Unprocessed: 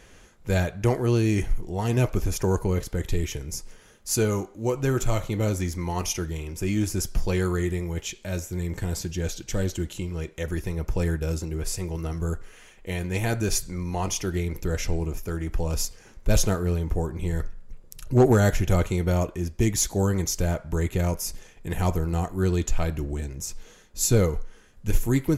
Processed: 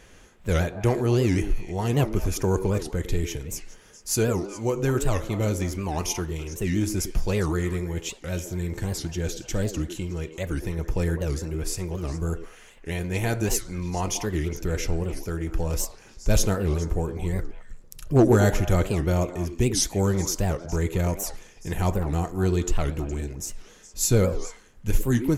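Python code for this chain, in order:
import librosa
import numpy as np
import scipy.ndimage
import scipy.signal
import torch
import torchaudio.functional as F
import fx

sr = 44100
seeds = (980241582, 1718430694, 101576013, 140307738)

y = fx.echo_stepped(x, sr, ms=104, hz=340.0, octaves=1.4, feedback_pct=70, wet_db=-6)
y = fx.record_warp(y, sr, rpm=78.0, depth_cents=250.0)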